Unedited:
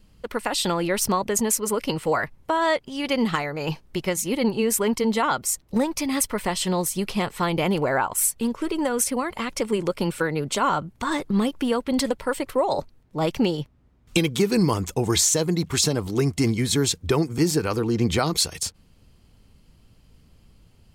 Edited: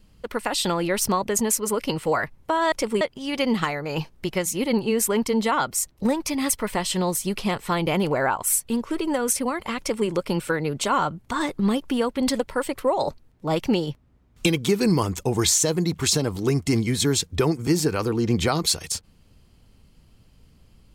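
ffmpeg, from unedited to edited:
-filter_complex "[0:a]asplit=3[s0][s1][s2];[s0]atrim=end=2.722[s3];[s1]atrim=start=9.498:end=9.792[s4];[s2]atrim=start=2.718[s5];[s3][s4]acrossfade=d=0.004:c1=hsin:c2=hsin[s6];[s6][s5]acrossfade=d=0.004:c1=hsin:c2=hsin"

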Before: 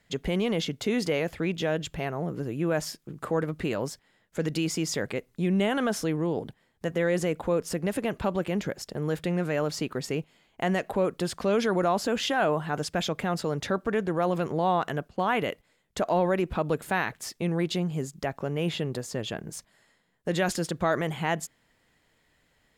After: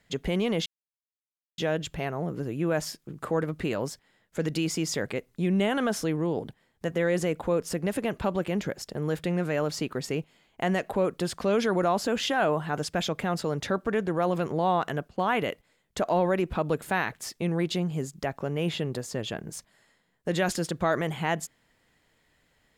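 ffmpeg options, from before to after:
-filter_complex "[0:a]asplit=3[s0][s1][s2];[s0]atrim=end=0.66,asetpts=PTS-STARTPTS,afade=t=out:st=0.656:d=0.004:c=hsin[s3];[s1]atrim=start=0.66:end=1.58,asetpts=PTS-STARTPTS,volume=0[s4];[s2]atrim=start=1.58,asetpts=PTS-STARTPTS,afade=t=in:d=0.004:c=hsin[s5];[s3][s4][s5]concat=n=3:v=0:a=1"

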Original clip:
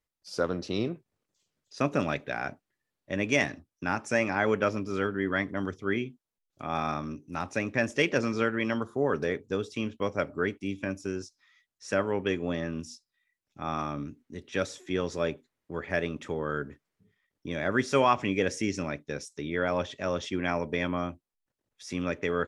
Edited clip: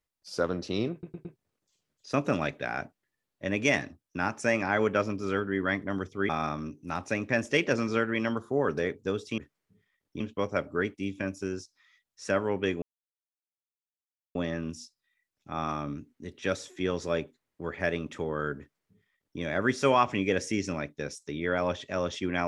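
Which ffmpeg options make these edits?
-filter_complex "[0:a]asplit=8[s0][s1][s2][s3][s4][s5][s6][s7];[s0]atrim=end=1.032[s8];[s1]atrim=start=0.918:end=1.032[s9];[s2]atrim=start=0.918:end=1.032[s10];[s3]atrim=start=0.918:end=5.962[s11];[s4]atrim=start=6.738:end=9.832[s12];[s5]atrim=start=16.678:end=17.502[s13];[s6]atrim=start=9.828:end=12.45,asetpts=PTS-STARTPTS,afade=t=out:st=2.618:d=0.004:c=hsin,apad=pad_dur=1.53[s14];[s7]atrim=start=12.45,asetpts=PTS-STARTPTS,afade=t=in:d=0.004:c=hsin[s15];[s8][s9]acrossfade=d=0.004:c1=hsin:c2=hsin[s16];[s16][s10]acrossfade=d=0.004:c1=hsin:c2=hsin[s17];[s17][s11]acrossfade=d=0.004:c1=hsin:c2=hsin[s18];[s18][s12]acrossfade=d=0.004:c1=hsin:c2=hsin[s19];[s19][s13]acrossfade=d=0.004:c1=hsin:c2=hsin[s20];[s14][s15]concat=n=2:v=0:a=1[s21];[s20][s21]acrossfade=d=0.004:c1=hsin:c2=hsin"

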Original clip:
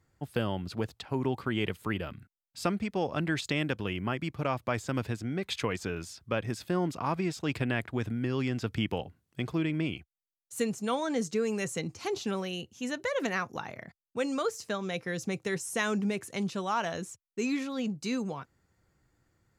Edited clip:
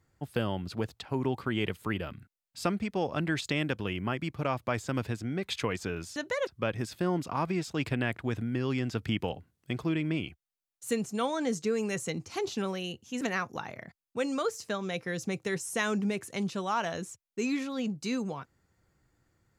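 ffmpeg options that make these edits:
-filter_complex "[0:a]asplit=4[s0][s1][s2][s3];[s0]atrim=end=6.162[s4];[s1]atrim=start=12.898:end=13.212[s5];[s2]atrim=start=6.158:end=12.902[s6];[s3]atrim=start=13.208[s7];[s4][s5]acrossfade=d=0.004:c1=hsin:c2=hsin[s8];[s8][s6]acrossfade=d=0.004:c1=hsin:c2=hsin[s9];[s9][s7]acrossfade=d=0.004:c1=hsin:c2=hsin"

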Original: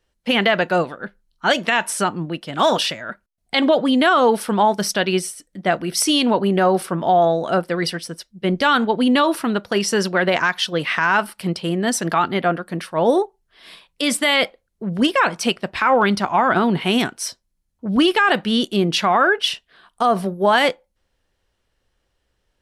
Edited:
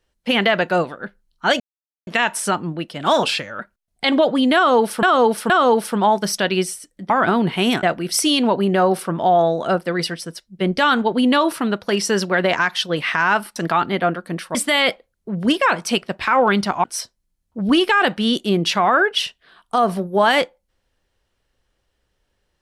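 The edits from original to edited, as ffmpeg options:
-filter_complex "[0:a]asplit=11[s0][s1][s2][s3][s4][s5][s6][s7][s8][s9][s10];[s0]atrim=end=1.6,asetpts=PTS-STARTPTS,afade=t=out:st=1.596:d=0.004:c=hsin,apad=pad_dur=0.47[s11];[s1]atrim=start=1.6:end=2.764,asetpts=PTS-STARTPTS,afade=t=in:d=0.004:c=hsin[s12];[s2]atrim=start=2.76:end=3.09,asetpts=PTS-STARTPTS,asetrate=40572,aresample=44100,atrim=end_sample=15818,asetpts=PTS-STARTPTS[s13];[s3]atrim=start=3.086:end=4.532[s14];[s4]atrim=start=4.058:end=4.532[s15];[s5]atrim=start=4.058:end=5.662[s16];[s6]atrim=start=16.378:end=17.112[s17];[s7]atrim=start=5.658:end=11.392[s18];[s8]atrim=start=11.978:end=12.972[s19];[s9]atrim=start=14.088:end=16.382[s20];[s10]atrim=start=17.108[s21];[s11][s12]concat=n=2:v=0:a=1[s22];[s22][s13]acrossfade=d=0.004:c1=hsin:c2=hsin[s23];[s23][s14]acrossfade=d=0.004:c1=hsin:c2=hsin[s24];[s24][s15]acrossfade=d=0.004:c1=hsin:c2=hsin[s25];[s25][s16]acrossfade=d=0.004:c1=hsin:c2=hsin[s26];[s26][s17]acrossfade=d=0.004:c1=hsin:c2=hsin[s27];[s27][s18]acrossfade=d=0.004:c1=hsin:c2=hsin[s28];[s28][s19]acrossfade=d=0.004:c1=hsin:c2=hsin[s29];[s29][s20]acrossfade=d=0.004:c1=hsin:c2=hsin[s30];[s30][s21]acrossfade=d=0.004:c1=hsin:c2=hsin"

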